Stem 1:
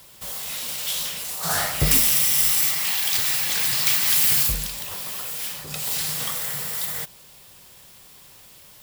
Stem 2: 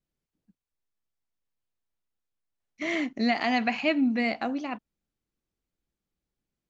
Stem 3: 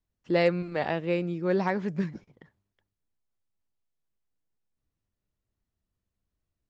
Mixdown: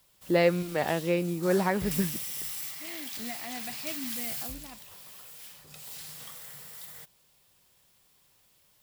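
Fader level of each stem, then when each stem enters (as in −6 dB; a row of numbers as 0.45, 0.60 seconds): −17.0, −15.5, +0.5 decibels; 0.00, 0.00, 0.00 seconds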